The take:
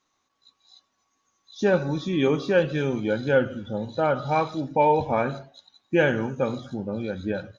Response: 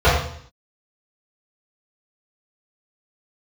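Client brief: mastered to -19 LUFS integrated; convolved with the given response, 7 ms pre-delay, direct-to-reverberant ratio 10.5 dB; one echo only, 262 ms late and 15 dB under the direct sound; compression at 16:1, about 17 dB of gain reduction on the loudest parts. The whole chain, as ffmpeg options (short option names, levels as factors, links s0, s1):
-filter_complex "[0:a]acompressor=threshold=0.0251:ratio=16,aecho=1:1:262:0.178,asplit=2[s0][s1];[1:a]atrim=start_sample=2205,adelay=7[s2];[s1][s2]afir=irnorm=-1:irlink=0,volume=0.0158[s3];[s0][s3]amix=inputs=2:normalize=0,volume=7.94"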